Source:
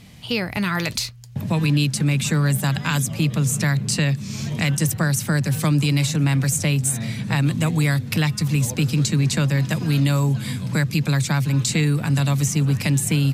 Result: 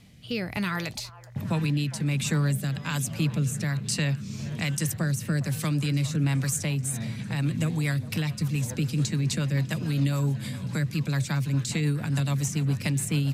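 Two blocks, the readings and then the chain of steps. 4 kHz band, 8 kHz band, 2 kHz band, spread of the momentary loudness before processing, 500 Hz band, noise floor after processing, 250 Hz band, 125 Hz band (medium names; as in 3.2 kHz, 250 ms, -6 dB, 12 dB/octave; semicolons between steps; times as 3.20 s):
-8.0 dB, -7.5 dB, -8.0 dB, 5 LU, -7.0 dB, -40 dBFS, -6.5 dB, -6.5 dB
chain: rotary cabinet horn 1.2 Hz, later 7 Hz, at 6.64 s; repeats whose band climbs or falls 410 ms, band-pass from 780 Hz, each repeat 0.7 oct, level -12 dB; trim -5 dB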